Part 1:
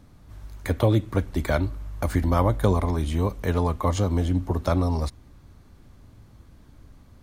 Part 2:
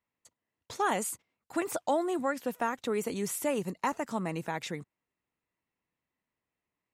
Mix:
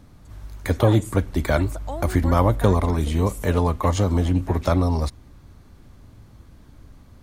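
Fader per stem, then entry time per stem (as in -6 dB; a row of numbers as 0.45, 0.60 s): +3.0, -5.0 dB; 0.00, 0.00 s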